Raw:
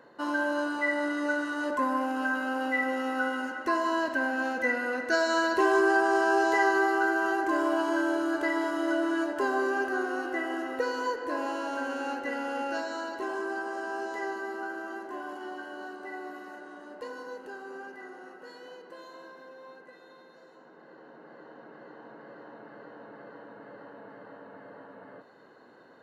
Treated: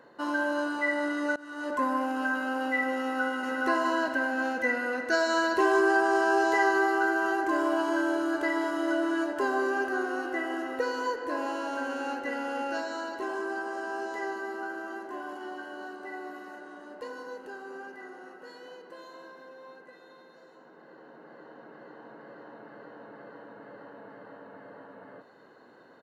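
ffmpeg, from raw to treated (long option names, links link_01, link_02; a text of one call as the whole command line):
ffmpeg -i in.wav -filter_complex "[0:a]asplit=2[link_01][link_02];[link_02]afade=type=in:start_time=3.01:duration=0.01,afade=type=out:start_time=3.65:duration=0.01,aecho=0:1:420|840|1260|1680|2100:0.841395|0.336558|0.134623|0.0538493|0.0215397[link_03];[link_01][link_03]amix=inputs=2:normalize=0,asplit=2[link_04][link_05];[link_04]atrim=end=1.36,asetpts=PTS-STARTPTS,afade=type=out:start_time=1.356:duration=0.004:curve=hsin:silence=0.0668344[link_06];[link_05]atrim=start=1.36,asetpts=PTS-STARTPTS,afade=type=in:duration=0.43:silence=0.0668344[link_07];[link_06][link_07]concat=n=2:v=0:a=1" out.wav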